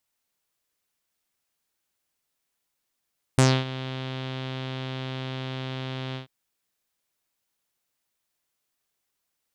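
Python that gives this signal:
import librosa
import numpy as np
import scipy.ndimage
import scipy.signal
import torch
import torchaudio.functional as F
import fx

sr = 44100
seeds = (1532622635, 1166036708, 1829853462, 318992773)

y = fx.sub_voice(sr, note=48, wave='saw', cutoff_hz=3500.0, q=3.6, env_oct=1.5, env_s=0.16, attack_ms=1.8, decay_s=0.26, sustain_db=-17.5, release_s=0.12, note_s=2.77, slope=12)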